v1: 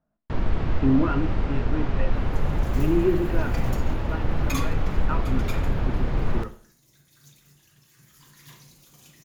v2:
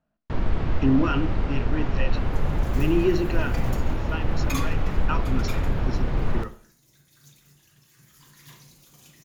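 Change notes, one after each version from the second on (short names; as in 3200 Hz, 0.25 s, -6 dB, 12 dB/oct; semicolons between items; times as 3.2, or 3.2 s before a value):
speech: remove LPF 1500 Hz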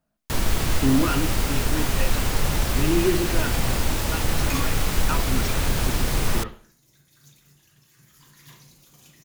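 first sound: remove tape spacing loss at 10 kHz 44 dB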